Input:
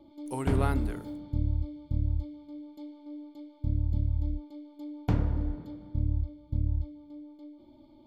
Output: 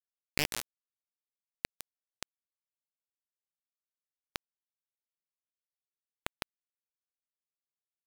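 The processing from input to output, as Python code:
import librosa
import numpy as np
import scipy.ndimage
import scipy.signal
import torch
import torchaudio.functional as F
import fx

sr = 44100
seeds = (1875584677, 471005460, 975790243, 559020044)

y = fx.rattle_buzz(x, sr, strikes_db=-35.0, level_db=-20.0)
y = fx.high_shelf(y, sr, hz=3500.0, db=-9.5)
y = fx.over_compress(y, sr, threshold_db=-32.0, ratio=-1.0)
y = fx.wah_lfo(y, sr, hz=0.7, low_hz=690.0, high_hz=1900.0, q=4.4)
y = fx.clip_asym(y, sr, top_db=-48.5, bottom_db=-30.5)
y = fx.filter_lfo_notch(y, sr, shape='square', hz=0.25, low_hz=380.0, high_hz=1600.0, q=2.4)
y = fx.echo_feedback(y, sr, ms=157, feedback_pct=35, wet_db=-4)
y = fx.quant_dither(y, sr, seeds[0], bits=6, dither='none')
y = fx.record_warp(y, sr, rpm=78.0, depth_cents=250.0)
y = y * 10.0 ** (16.5 / 20.0)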